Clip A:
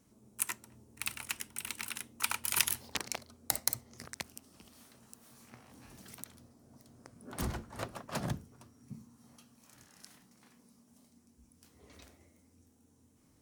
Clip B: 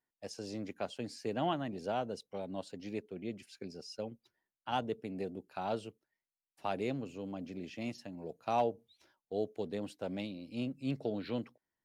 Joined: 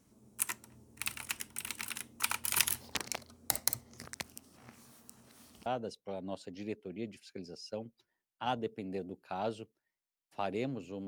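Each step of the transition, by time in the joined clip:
clip A
0:04.57–0:05.66: reverse
0:05.66: continue with clip B from 0:01.92

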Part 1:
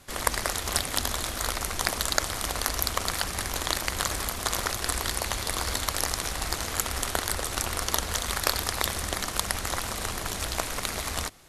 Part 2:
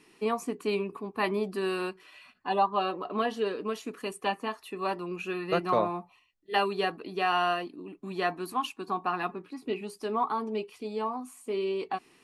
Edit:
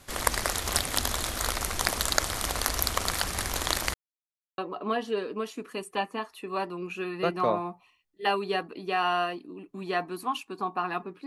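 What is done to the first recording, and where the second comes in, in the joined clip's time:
part 1
0:03.94–0:04.58: silence
0:04.58: continue with part 2 from 0:02.87

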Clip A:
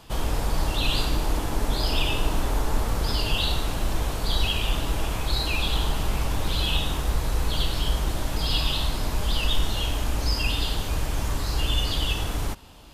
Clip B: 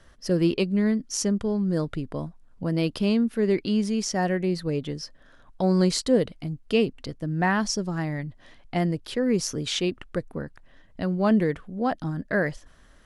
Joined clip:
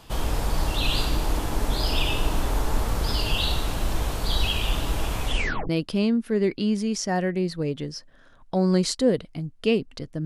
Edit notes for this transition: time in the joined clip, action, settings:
clip A
0:05.22: tape stop 0.47 s
0:05.69: continue with clip B from 0:02.76

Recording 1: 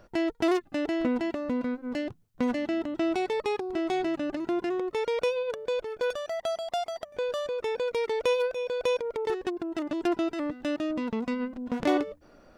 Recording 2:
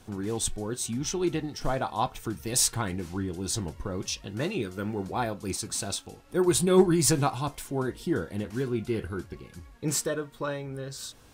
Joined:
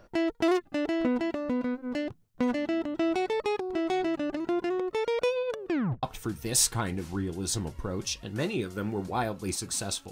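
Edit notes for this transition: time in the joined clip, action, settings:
recording 1
0:05.58: tape stop 0.45 s
0:06.03: continue with recording 2 from 0:02.04

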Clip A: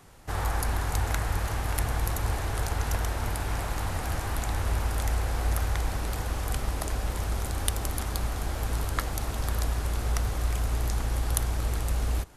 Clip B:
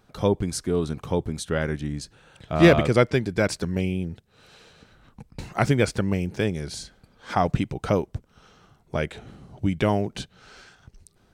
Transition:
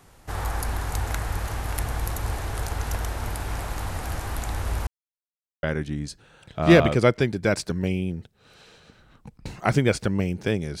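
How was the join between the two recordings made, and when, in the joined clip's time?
clip A
0:04.87–0:05.63: silence
0:05.63: continue with clip B from 0:01.56

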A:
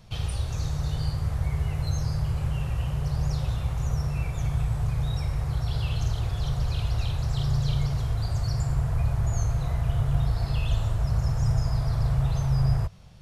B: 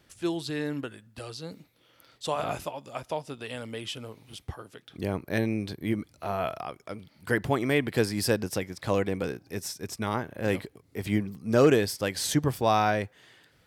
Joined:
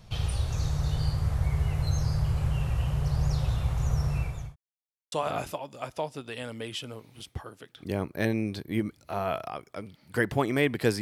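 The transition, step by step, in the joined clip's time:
A
0:04.15–0:04.56: fade out linear
0:04.56–0:05.12: silence
0:05.12: continue with B from 0:02.25

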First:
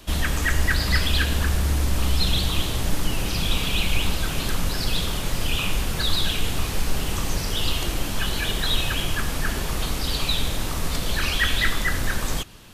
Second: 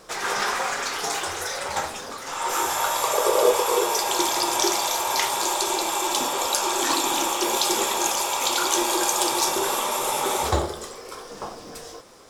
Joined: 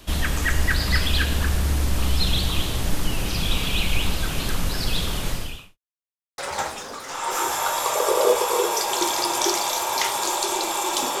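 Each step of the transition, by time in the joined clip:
first
0:05.30–0:05.78: fade out quadratic
0:05.78–0:06.38: silence
0:06.38: continue with second from 0:01.56

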